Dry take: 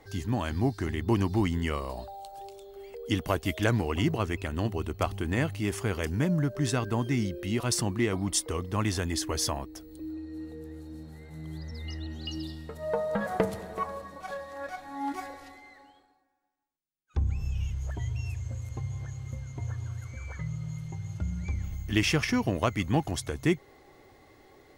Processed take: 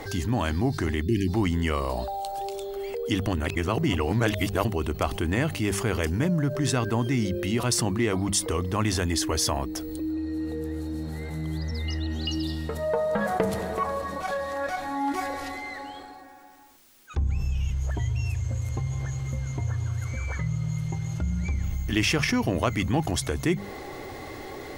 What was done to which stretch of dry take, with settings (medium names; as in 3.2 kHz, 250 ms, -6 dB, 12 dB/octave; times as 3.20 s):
1.02–1.28 s: spectral selection erased 420–1600 Hz
3.27–4.65 s: reverse
whole clip: hum notches 50/100/150/200 Hz; level flattener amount 50%